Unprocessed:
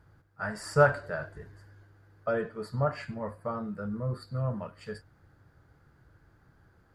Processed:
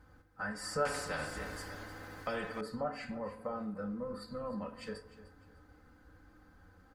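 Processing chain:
comb filter 3.9 ms, depth 89%
downward compressor 2 to 1, threshold −40 dBFS, peak gain reduction 14.5 dB
flanger 0.33 Hz, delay 7.4 ms, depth 7.4 ms, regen +83%
on a send: repeating echo 302 ms, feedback 31%, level −16.5 dB
on the sum: feedback delay network reverb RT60 0.89 s, high-frequency decay 0.4×, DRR 11.5 dB
0:00.85–0:02.61: every bin compressed towards the loudest bin 2 to 1
level +4 dB

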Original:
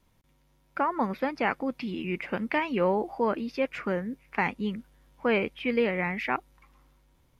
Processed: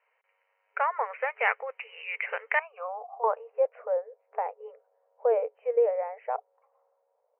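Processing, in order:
low-pass filter sweep 2,200 Hz → 640 Hz, 0:02.41–0:03.69
0:02.59–0:03.24: formant filter a
brick-wall band-pass 420–3,100 Hz
level −1.5 dB

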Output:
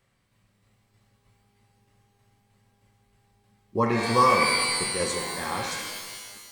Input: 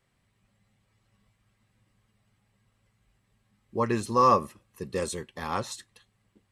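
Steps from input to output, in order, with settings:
shaped tremolo saw down 3.2 Hz, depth 65%
reverb with rising layers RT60 1.5 s, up +12 semitones, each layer −2 dB, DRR 2.5 dB
level +3.5 dB

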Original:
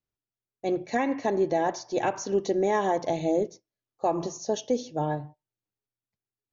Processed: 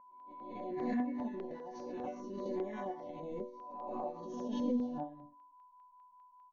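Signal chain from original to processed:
peak hold with a rise ahead of every peak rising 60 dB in 0.76 s
bass and treble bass +10 dB, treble 0 dB
output level in coarse steps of 11 dB
resonators tuned to a chord B3 minor, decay 0.42 s
steady tone 1,000 Hz −57 dBFS
hollow resonant body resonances 230/550/2,100 Hz, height 10 dB, ringing for 55 ms
auto-filter notch saw down 5 Hz 400–3,600 Hz
high-frequency loss of the air 220 metres
background raised ahead of every attack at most 30 dB per second
level +1.5 dB

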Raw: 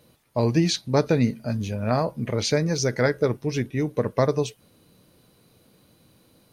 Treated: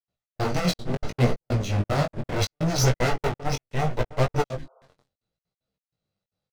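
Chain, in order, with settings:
lower of the sound and its delayed copy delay 1.5 ms
low-pass filter 7,100 Hz 24 dB per octave
low-shelf EQ 71 Hz +3 dB
feedback echo with a low-pass in the loop 303 ms, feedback 17%, low-pass 810 Hz, level −13 dB
leveller curve on the samples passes 5
flanger 1.6 Hz, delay 8.5 ms, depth 9 ms, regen −42%
gate pattern ".xx..xxxx.xx.x" 190 BPM −60 dB
chorus effect 0.7 Hz, delay 15.5 ms, depth 6.4 ms
healed spectral selection 0:04.60–0:04.81, 390–1,500 Hz after
expander for the loud parts 1.5 to 1, over −32 dBFS

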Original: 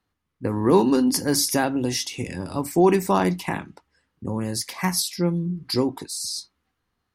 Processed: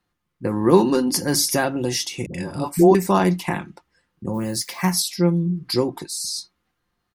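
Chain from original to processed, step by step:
comb filter 5.7 ms, depth 40%
0:02.26–0:02.95: all-pass dispersion highs, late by 80 ms, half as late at 460 Hz
0:04.33–0:04.91: background noise violet −54 dBFS
level +1.5 dB

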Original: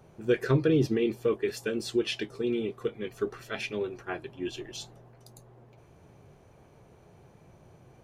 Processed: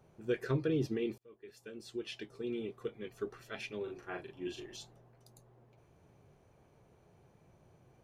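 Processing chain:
0:01.18–0:02.61: fade in
0:03.83–0:04.77: double-tracking delay 39 ms −3 dB
level −8.5 dB

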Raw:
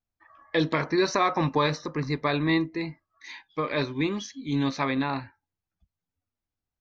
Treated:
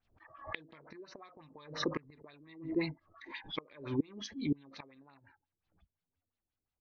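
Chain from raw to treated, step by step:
gate with flip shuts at −20 dBFS, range −30 dB
auto-filter low-pass sine 5.7 Hz 370–4,200 Hz
background raised ahead of every attack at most 120 dB per second
level −4 dB

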